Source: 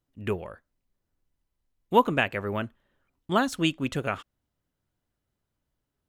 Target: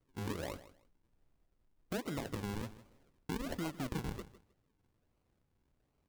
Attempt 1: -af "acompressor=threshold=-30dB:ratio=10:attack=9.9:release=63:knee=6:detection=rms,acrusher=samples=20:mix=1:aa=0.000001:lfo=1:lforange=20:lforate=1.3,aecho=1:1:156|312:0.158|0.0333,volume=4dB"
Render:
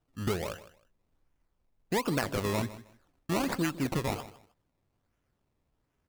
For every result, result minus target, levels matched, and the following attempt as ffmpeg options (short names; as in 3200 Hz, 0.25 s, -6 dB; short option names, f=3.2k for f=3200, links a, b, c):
compressor: peak gain reduction -10 dB; decimation with a swept rate: distortion -8 dB
-af "acompressor=threshold=-41dB:ratio=10:attack=9.9:release=63:knee=6:detection=rms,acrusher=samples=20:mix=1:aa=0.000001:lfo=1:lforange=20:lforate=1.3,aecho=1:1:156|312:0.158|0.0333,volume=4dB"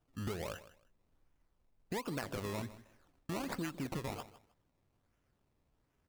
decimation with a swept rate: distortion -8 dB
-af "acompressor=threshold=-41dB:ratio=10:attack=9.9:release=63:knee=6:detection=rms,acrusher=samples=49:mix=1:aa=0.000001:lfo=1:lforange=49:lforate=1.3,aecho=1:1:156|312:0.158|0.0333,volume=4dB"